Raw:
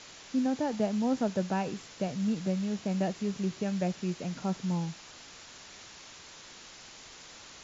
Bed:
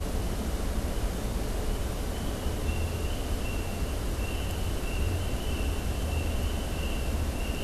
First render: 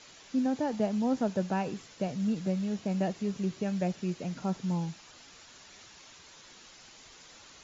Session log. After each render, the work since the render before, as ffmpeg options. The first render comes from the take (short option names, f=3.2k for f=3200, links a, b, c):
-af "afftdn=nr=6:nf=-50"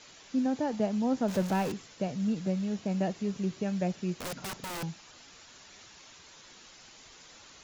-filter_complex "[0:a]asettb=1/sr,asplit=3[a][b][c];[a]atrim=end=1.284[d];[b]atrim=start=1.28:end=1.72,asetpts=PTS-STARTPTS,afade=t=in:d=0.004:c=qsin,afade=t=out:st=0.436:d=0.004:c=qsin,aeval=exprs='val(0)+0.5*0.02*sgn(val(0))':c=same[e];[c]atrim=start=1.716[f];[d][e]acrossfade=d=0.004:c1=hsin:c2=qsin[g];[g][f]acrossfade=d=0.004:c1=qsin:c2=hsin,asettb=1/sr,asplit=3[h][i][j];[h]atrim=end=4.194[k];[i]atrim=start=4.19:end=4.83,asetpts=PTS-STARTPTS,afade=t=in:d=0.004:c=qsin,afade=t=out:st=0.636:d=0.004:c=qsin,aeval=exprs='(mod(42.2*val(0)+1,2)-1)/42.2':c=same[l];[j]atrim=start=4.826[m];[k][l]acrossfade=d=0.004:c1=hsin:c2=qsin[n];[n][m]acrossfade=d=0.004:c1=qsin:c2=hsin"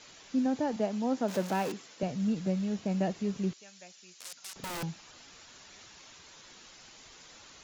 -filter_complex "[0:a]asettb=1/sr,asplit=3[a][b][c];[a]atrim=end=0.764[d];[b]atrim=start=0.76:end=2.03,asetpts=PTS-STARTPTS,afade=t=in:d=0.004:c=qsin,afade=t=out:st=1.266:d=0.004:c=qsin,highpass=230[e];[c]atrim=start=2.026[f];[d][e]acrossfade=d=0.004:c1=hsin:c2=qsin[g];[g][f]acrossfade=d=0.004:c1=qsin:c2=hsin,asettb=1/sr,asplit=3[h][i][j];[h]atrim=end=3.534[k];[i]atrim=start=3.53:end=4.56,asetpts=PTS-STARTPTS,afade=t=in:d=0.004:c=qsin,afade=t=out:st=1.026:d=0.004:c=qsin,bandpass=f=7.3k:t=q:w=0.76[l];[j]atrim=start=4.556[m];[k][l]acrossfade=d=0.004:c1=hsin:c2=qsin[n];[n][m]acrossfade=d=0.004:c1=qsin:c2=hsin"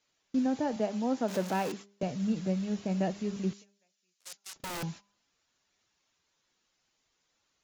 -af "agate=range=-24dB:threshold=-44dB:ratio=16:detection=peak,bandreject=f=201.1:t=h:w=4,bandreject=f=402.2:t=h:w=4,bandreject=f=603.3:t=h:w=4,bandreject=f=804.4:t=h:w=4,bandreject=f=1.0055k:t=h:w=4"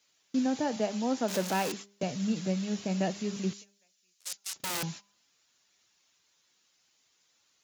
-af "highpass=86,highshelf=f=2.2k:g=9"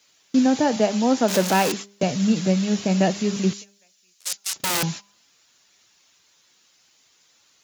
-af "volume=10.5dB"